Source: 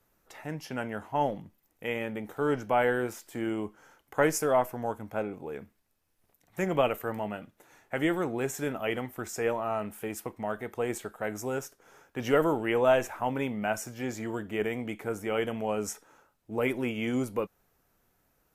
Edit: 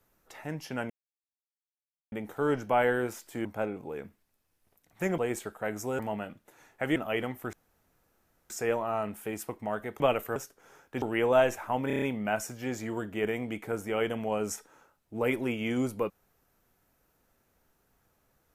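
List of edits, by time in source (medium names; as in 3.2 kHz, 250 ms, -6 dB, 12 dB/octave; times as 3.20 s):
0.90–2.12 s: mute
3.45–5.02 s: delete
6.75–7.11 s: swap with 10.77–11.58 s
8.08–8.70 s: delete
9.27 s: insert room tone 0.97 s
12.24–12.54 s: delete
13.39 s: stutter 0.03 s, 6 plays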